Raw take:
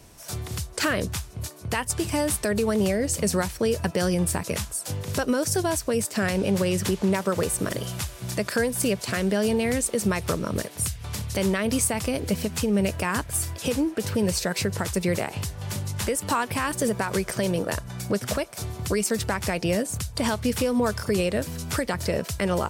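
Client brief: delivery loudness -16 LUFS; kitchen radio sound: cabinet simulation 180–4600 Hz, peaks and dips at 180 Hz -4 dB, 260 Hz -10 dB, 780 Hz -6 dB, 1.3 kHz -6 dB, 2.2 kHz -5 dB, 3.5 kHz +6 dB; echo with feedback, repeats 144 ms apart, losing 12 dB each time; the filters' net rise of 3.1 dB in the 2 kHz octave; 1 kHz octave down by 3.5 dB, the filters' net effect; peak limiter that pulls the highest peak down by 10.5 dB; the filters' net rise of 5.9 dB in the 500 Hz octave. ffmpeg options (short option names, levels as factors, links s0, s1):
-af "equalizer=f=500:t=o:g=9,equalizer=f=1000:t=o:g=-4.5,equalizer=f=2000:t=o:g=8,alimiter=limit=0.133:level=0:latency=1,highpass=180,equalizer=f=180:t=q:w=4:g=-4,equalizer=f=260:t=q:w=4:g=-10,equalizer=f=780:t=q:w=4:g=-6,equalizer=f=1300:t=q:w=4:g=-6,equalizer=f=2200:t=q:w=4:g=-5,equalizer=f=3500:t=q:w=4:g=6,lowpass=f=4600:w=0.5412,lowpass=f=4600:w=1.3066,aecho=1:1:144|288|432:0.251|0.0628|0.0157,volume=5.01"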